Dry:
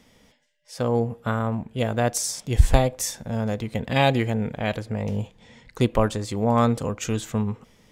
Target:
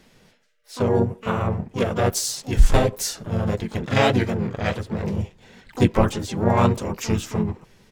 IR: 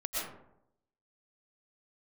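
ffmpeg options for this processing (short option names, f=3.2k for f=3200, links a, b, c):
-filter_complex "[0:a]flanger=delay=2.5:depth=8.5:regen=-15:speed=1.6:shape=triangular,asplit=3[a][b][c];[b]asetrate=35002,aresample=44100,atempo=1.25992,volume=-1dB[d];[c]asetrate=88200,aresample=44100,atempo=0.5,volume=-11dB[e];[a][d][e]amix=inputs=3:normalize=0,volume=2.5dB"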